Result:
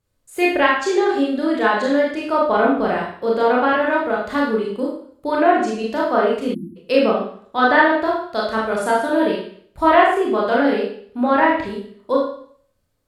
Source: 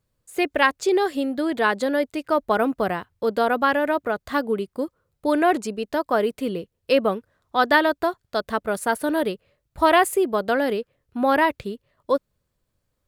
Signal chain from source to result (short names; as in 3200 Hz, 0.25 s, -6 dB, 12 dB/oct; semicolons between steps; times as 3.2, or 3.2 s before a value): treble ducked by the level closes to 2500 Hz, closed at -14 dBFS; Schroeder reverb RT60 0.56 s, combs from 25 ms, DRR -4 dB; spectral delete 6.54–6.76, 360–9700 Hz; gain -1 dB